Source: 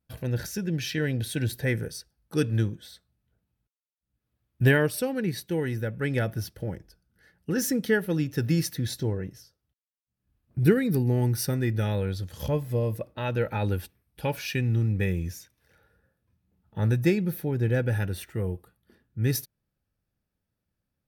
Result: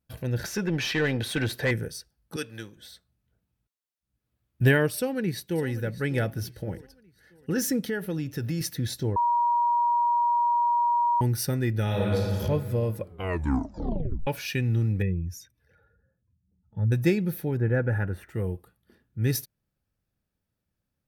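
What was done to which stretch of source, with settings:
0:00.44–0:01.71: mid-hump overdrive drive 18 dB, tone 2,100 Hz, clips at −15 dBFS
0:02.36–0:02.77: high-pass filter 1,100 Hz 6 dB per octave
0:04.95–0:05.66: delay throw 600 ms, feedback 40%, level −15 dB
0:06.32–0:06.73: hum removal 119.2 Hz, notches 27
0:07.85–0:08.61: downward compressor 3 to 1, threshold −27 dBFS
0:09.16–0:11.21: beep over 953 Hz −20 dBFS
0:11.83–0:12.33: thrown reverb, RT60 2.2 s, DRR −3.5 dB
0:12.96: tape stop 1.31 s
0:15.02–0:16.92: expanding power law on the bin magnitudes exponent 1.6
0:17.57–0:18.29: high shelf with overshoot 2,400 Hz −13.5 dB, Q 1.5

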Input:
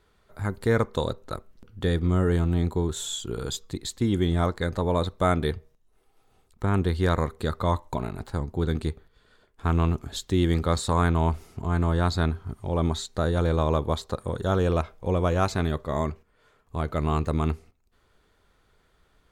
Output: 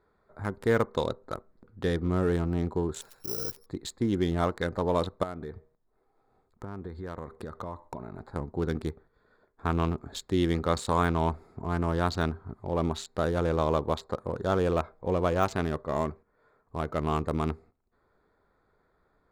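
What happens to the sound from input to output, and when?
0:03.01–0:03.66: bad sample-rate conversion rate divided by 8×, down filtered, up zero stuff
0:05.23–0:08.36: downward compressor 8 to 1, threshold −30 dBFS
whole clip: adaptive Wiener filter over 15 samples; de-essing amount 70%; low-shelf EQ 130 Hz −11 dB

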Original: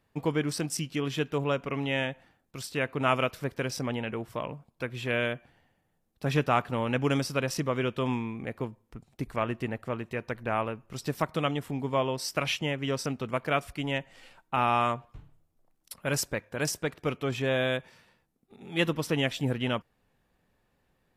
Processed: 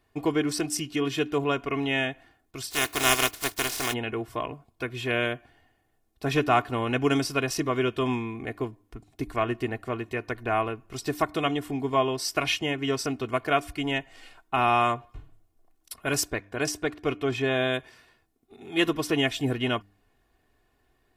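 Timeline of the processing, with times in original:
0:02.70–0:03.92: compressing power law on the bin magnitudes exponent 0.28
0:16.30–0:17.74: high-shelf EQ 7,600 Hz −8 dB
whole clip: comb filter 2.8 ms, depth 66%; hum removal 99.86 Hz, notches 3; level +2 dB

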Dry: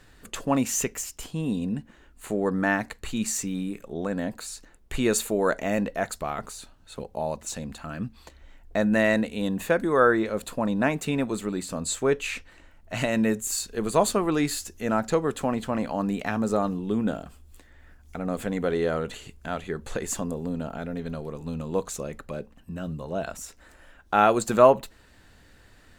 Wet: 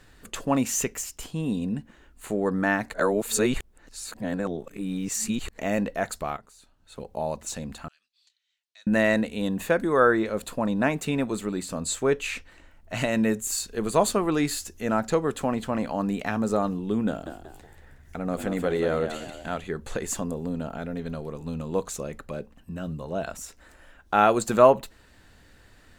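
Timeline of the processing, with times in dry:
0:02.94–0:05.58: reverse
0:06.37–0:07.12: fade in quadratic, from −16 dB
0:07.88–0:08.87: four-pole ladder band-pass 4,800 Hz, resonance 35%
0:17.08–0:19.58: echo with shifted repeats 184 ms, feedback 37%, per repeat +62 Hz, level −8 dB

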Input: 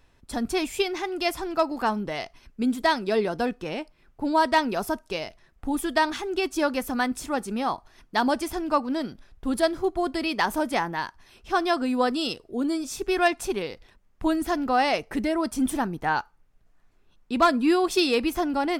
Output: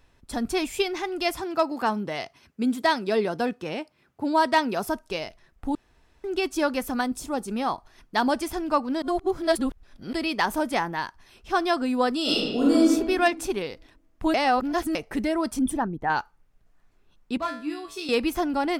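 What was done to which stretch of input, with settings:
0:01.40–0:04.86: high-pass filter 82 Hz 24 dB per octave
0:05.75–0:06.24: fill with room tone
0:07.01–0:07.48: parametric band 1,900 Hz −8.5 dB 1.3 octaves
0:09.02–0:10.13: reverse
0:12.22–0:12.79: thrown reverb, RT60 1.4 s, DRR −7.5 dB
0:14.34–0:14.95: reverse
0:15.59–0:16.10: spectral envelope exaggerated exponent 1.5
0:17.37–0:18.09: tuned comb filter 60 Hz, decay 0.42 s, harmonics odd, mix 90%

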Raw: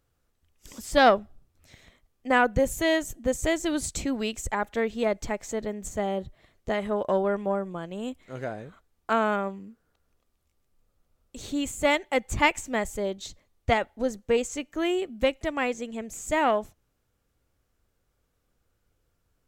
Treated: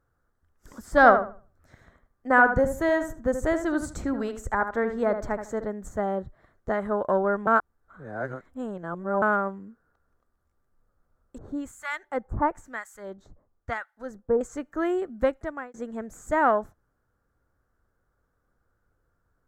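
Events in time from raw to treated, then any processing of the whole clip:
0:00.80–0:05.64: feedback echo with a low-pass in the loop 76 ms, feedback 25%, low-pass 2,400 Hz, level −8 dB
0:07.47–0:09.22: reverse
0:11.38–0:14.41: two-band tremolo in antiphase 1 Hz, depth 100%, crossover 1,200 Hz
0:15.30–0:15.74: fade out
whole clip: high shelf with overshoot 2,000 Hz −9.5 dB, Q 3

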